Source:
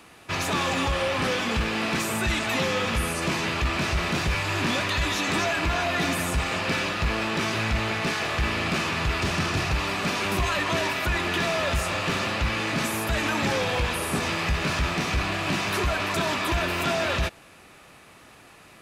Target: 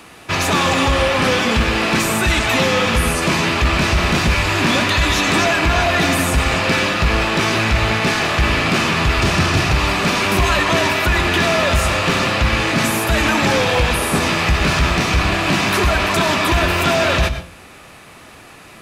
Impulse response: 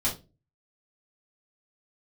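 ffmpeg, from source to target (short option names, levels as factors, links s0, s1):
-filter_complex "[0:a]asplit=2[s0][s1];[1:a]atrim=start_sample=2205,adelay=97[s2];[s1][s2]afir=irnorm=-1:irlink=0,volume=0.106[s3];[s0][s3]amix=inputs=2:normalize=0,volume=2.82"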